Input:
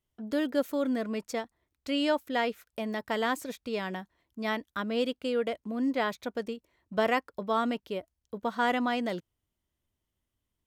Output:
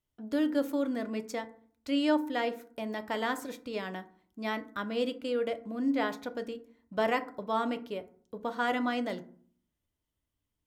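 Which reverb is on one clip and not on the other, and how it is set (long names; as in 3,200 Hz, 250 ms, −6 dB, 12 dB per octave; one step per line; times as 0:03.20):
feedback delay network reverb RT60 0.5 s, low-frequency decay 1.45×, high-frequency decay 0.45×, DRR 8.5 dB
level −3 dB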